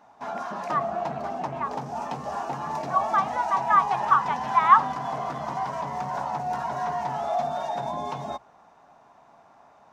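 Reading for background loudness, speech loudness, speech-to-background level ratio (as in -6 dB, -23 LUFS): -30.5 LUFS, -23.0 LUFS, 7.5 dB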